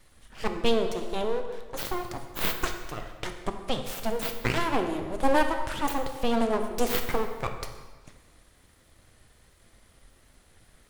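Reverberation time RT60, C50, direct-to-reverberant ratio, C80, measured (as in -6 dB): 1.4 s, 7.0 dB, 5.5 dB, 8.5 dB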